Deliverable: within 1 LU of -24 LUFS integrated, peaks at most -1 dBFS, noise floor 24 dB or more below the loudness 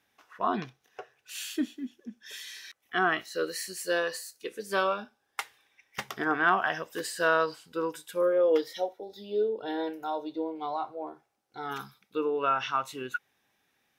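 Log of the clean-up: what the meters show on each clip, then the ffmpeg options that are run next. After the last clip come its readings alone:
loudness -30.5 LUFS; peak -11.0 dBFS; loudness target -24.0 LUFS
-> -af "volume=6.5dB"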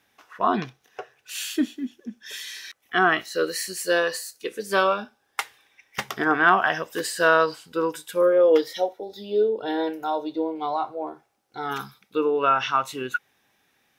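loudness -24.0 LUFS; peak -4.5 dBFS; noise floor -68 dBFS

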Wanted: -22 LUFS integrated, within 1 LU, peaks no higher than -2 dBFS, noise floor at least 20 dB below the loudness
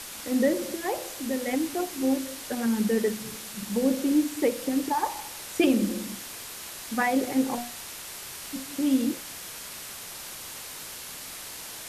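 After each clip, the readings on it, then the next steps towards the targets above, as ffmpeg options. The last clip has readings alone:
noise floor -40 dBFS; noise floor target -49 dBFS; loudness -29.0 LUFS; peak -11.5 dBFS; loudness target -22.0 LUFS
-> -af "afftdn=nr=9:nf=-40"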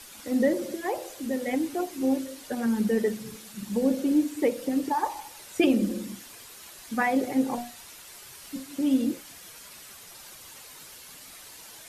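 noise floor -47 dBFS; noise floor target -48 dBFS
-> -af "afftdn=nr=6:nf=-47"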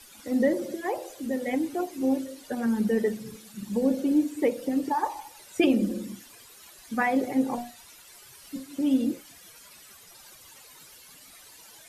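noise floor -51 dBFS; loudness -27.5 LUFS; peak -11.5 dBFS; loudness target -22.0 LUFS
-> -af "volume=5.5dB"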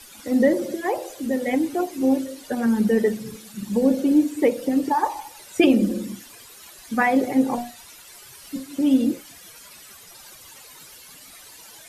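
loudness -22.0 LUFS; peak -6.0 dBFS; noise floor -46 dBFS

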